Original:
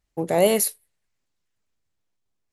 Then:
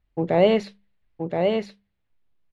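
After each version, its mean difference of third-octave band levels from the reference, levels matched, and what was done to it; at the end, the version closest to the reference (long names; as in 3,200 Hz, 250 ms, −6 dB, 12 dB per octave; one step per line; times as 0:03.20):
5.5 dB: low-pass filter 3,700 Hz 24 dB per octave
low-shelf EQ 170 Hz +8.5 dB
mains-hum notches 50/100/150/200 Hz
on a send: single-tap delay 1,024 ms −4.5 dB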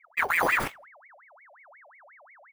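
14.0 dB: samples in bit-reversed order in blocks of 64 samples
spectral tilt −4.5 dB per octave
brickwall limiter −12.5 dBFS, peak gain reduction 7.5 dB
ring modulator whose carrier an LFO sweeps 1,400 Hz, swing 60%, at 5.6 Hz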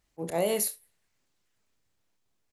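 3.0 dB: low-shelf EQ 71 Hz −7.5 dB
volume swells 203 ms
downward compressor 10 to 1, threshold −29 dBFS, peak gain reduction 13 dB
on a send: ambience of single reflections 29 ms −10 dB, 66 ms −16.5 dB
on the sum: level +4.5 dB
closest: third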